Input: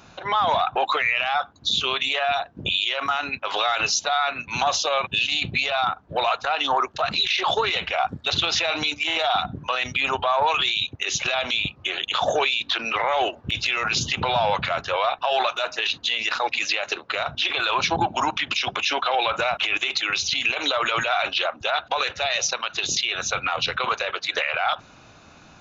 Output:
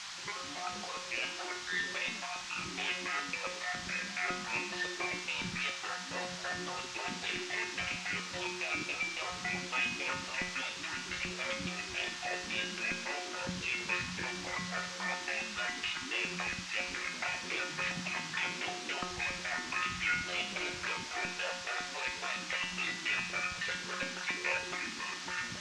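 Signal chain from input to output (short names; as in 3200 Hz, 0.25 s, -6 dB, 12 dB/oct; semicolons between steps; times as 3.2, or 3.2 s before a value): negative-ratio compressor -25 dBFS, ratio -0.5; echoes that change speed 0.105 s, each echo -6 st, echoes 2; LFO low-pass square 3.6 Hz 250–2400 Hz; resonator 180 Hz, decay 0.64 s, harmonics all, mix 90%; band noise 860–6400 Hz -43 dBFS; gain -1.5 dB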